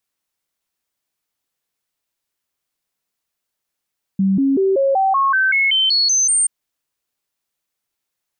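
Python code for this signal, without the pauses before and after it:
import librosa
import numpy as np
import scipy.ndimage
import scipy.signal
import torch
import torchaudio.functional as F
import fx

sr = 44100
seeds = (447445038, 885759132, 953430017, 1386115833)

y = fx.stepped_sweep(sr, from_hz=193.0, direction='up', per_octave=2, tones=12, dwell_s=0.19, gap_s=0.0, level_db=-12.5)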